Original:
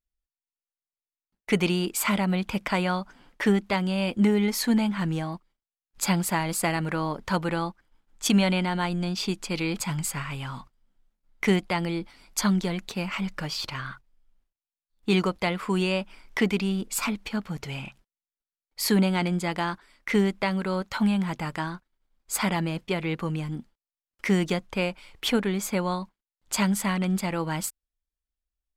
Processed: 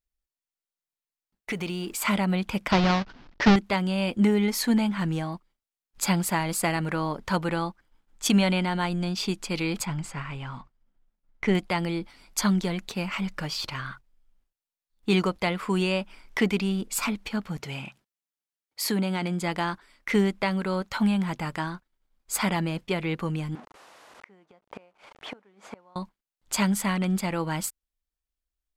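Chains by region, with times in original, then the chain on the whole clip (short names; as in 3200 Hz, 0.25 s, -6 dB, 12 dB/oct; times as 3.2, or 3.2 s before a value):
1.51–2.02 G.711 law mismatch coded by mu + compressor 3:1, threshold -30 dBFS
2.71–3.56 half-waves squared off + steep low-pass 5400 Hz + bell 490 Hz -3.5 dB 0.36 oct
9.85–11.55 half-wave gain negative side -3 dB + LPF 5200 Hz + bell 4100 Hz -5 dB 1.5 oct
17.59–19.42 HPF 110 Hz + compressor 2:1, threshold -25 dBFS
23.55–25.96 delta modulation 64 kbps, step -34 dBFS + band-pass 800 Hz, Q 0.96 + flipped gate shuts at -25 dBFS, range -26 dB
whole clip: dry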